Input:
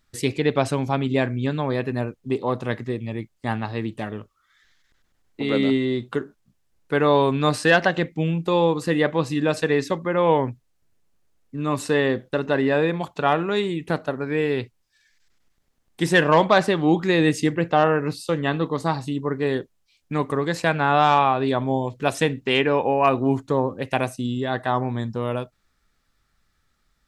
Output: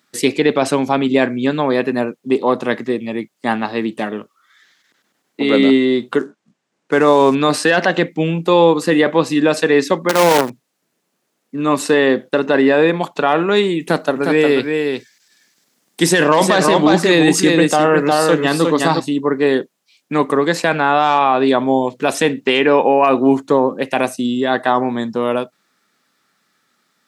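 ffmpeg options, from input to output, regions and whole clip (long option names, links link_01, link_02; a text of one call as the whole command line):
ffmpeg -i in.wav -filter_complex "[0:a]asettb=1/sr,asplit=3[link_01][link_02][link_03];[link_01]atrim=end=6.194[link_04];[link_02]atrim=start=6.19:end=7.35,asetpts=PTS-STARTPTS,afade=type=in:duration=0.004:curve=qsin,afade=type=out:start_time=1.156:duration=0.004:curve=qsin,bass=frequency=250:gain=1,treble=frequency=4000:gain=-13,acrusher=bits=8:mode=log:mix=0:aa=0.000001,lowpass=frequency=7200:width_type=q:width=1.9[link_05];[link_03]atrim=start=7.346[link_06];[link_04][link_05]acrossfade=duration=0.004:curve1=hsin:curve2=qsin[link_07];[link_07][link_06]acrossfade=duration=0.004:curve1=qsin:curve2=hsin,asettb=1/sr,asplit=3[link_08][link_09][link_10];[link_08]atrim=end=10.094[link_11];[link_09]atrim=start=10.09:end=10.5,asetpts=PTS-STARTPTS,afade=type=in:duration=0.004:curve=qsin,afade=type=out:start_time=0.406:duration=0.004:curve=qsin,acrusher=bits=4:dc=4:mix=0:aa=0.000001,asoftclip=type=hard:threshold=-7.5dB[link_12];[link_10]atrim=start=10.496[link_13];[link_11][link_12]acrossfade=duration=0.004:curve1=hsin:curve2=qsin[link_14];[link_14][link_13]acrossfade=duration=0.004:curve1=qsin:curve2=hsin,asettb=1/sr,asplit=3[link_15][link_16][link_17];[link_15]atrim=end=13.804[link_18];[link_16]atrim=start=13.8:end=19,asetpts=PTS-STARTPTS,afade=type=in:duration=0.004:curve=qsin,afade=type=out:start_time=5.196:duration=0.004:curve=qsin,bass=frequency=250:gain=2,treble=frequency=4000:gain=7,aecho=1:1:359:0.562,atrim=end_sample=229320[link_19];[link_17]atrim=start=18.996[link_20];[link_18][link_19]acrossfade=duration=0.004:curve1=hsin:curve2=qsin[link_21];[link_21][link_20]acrossfade=duration=0.004:curve1=qsin:curve2=hsin,highpass=frequency=190:width=0.5412,highpass=frequency=190:width=1.3066,alimiter=limit=-12dB:level=0:latency=1:release=11,volume=9dB" out.wav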